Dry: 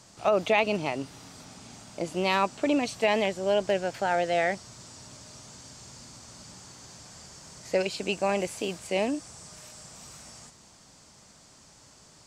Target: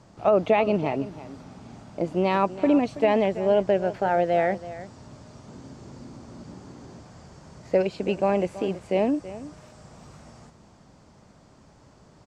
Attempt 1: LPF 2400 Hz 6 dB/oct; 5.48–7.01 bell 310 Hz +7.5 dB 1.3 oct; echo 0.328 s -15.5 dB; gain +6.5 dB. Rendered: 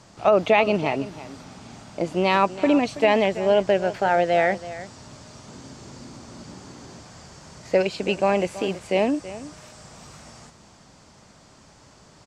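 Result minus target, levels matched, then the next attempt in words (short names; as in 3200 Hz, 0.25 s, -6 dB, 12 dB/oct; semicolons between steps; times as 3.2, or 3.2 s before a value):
2000 Hz band +5.0 dB
LPF 710 Hz 6 dB/oct; 5.48–7.01 bell 310 Hz +7.5 dB 1.3 oct; echo 0.328 s -15.5 dB; gain +6.5 dB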